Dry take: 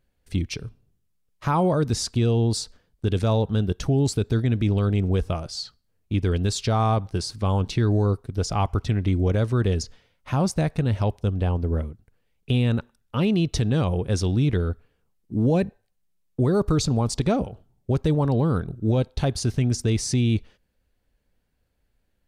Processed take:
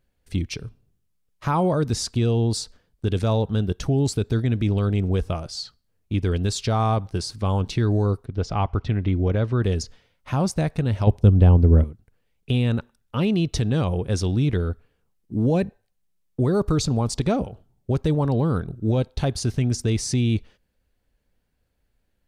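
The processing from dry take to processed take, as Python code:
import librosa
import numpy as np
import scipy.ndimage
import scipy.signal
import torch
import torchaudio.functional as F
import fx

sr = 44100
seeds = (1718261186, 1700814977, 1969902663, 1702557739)

y = fx.lowpass(x, sr, hz=3700.0, slope=12, at=(8.25, 9.64))
y = fx.low_shelf(y, sr, hz=490.0, db=10.5, at=(11.07, 11.84))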